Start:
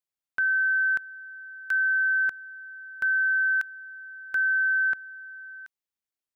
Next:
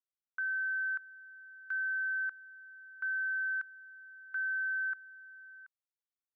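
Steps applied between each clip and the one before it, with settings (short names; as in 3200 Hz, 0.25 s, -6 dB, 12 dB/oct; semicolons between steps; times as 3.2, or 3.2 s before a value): band-pass 1300 Hz, Q 2.8; gain -7.5 dB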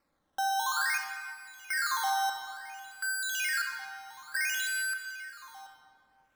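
tilt +5 dB/oct; decimation with a swept rate 13×, swing 100% 0.57 Hz; shoebox room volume 3800 m³, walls mixed, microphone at 2.2 m; gain -1 dB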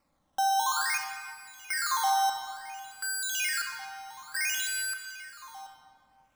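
fifteen-band EQ 400 Hz -9 dB, 1600 Hz -9 dB, 4000 Hz -4 dB, 16000 Hz -6 dB; gain +6 dB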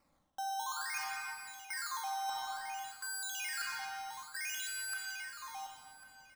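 reverse; compressor 12:1, threshold -36 dBFS, peak gain reduction 13.5 dB; reverse; echo 1.099 s -18 dB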